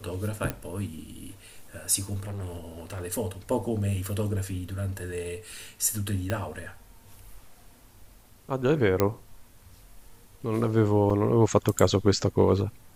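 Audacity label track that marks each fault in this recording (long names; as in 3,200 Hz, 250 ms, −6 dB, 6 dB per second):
0.500000	0.500000	click −15 dBFS
2.230000	3.020000	clipping −32 dBFS
4.060000	4.060000	click
6.300000	6.300000	click −14 dBFS
9.000000	9.000000	click −8 dBFS
11.100000	11.100000	drop-out 4.9 ms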